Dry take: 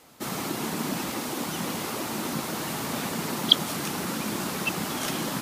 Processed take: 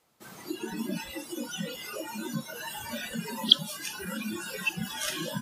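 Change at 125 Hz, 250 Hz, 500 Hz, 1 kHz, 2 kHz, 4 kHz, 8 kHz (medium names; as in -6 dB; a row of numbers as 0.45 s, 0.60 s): -5.5 dB, -4.5 dB, -6.0 dB, -9.0 dB, -2.5 dB, -1.0 dB, -6.0 dB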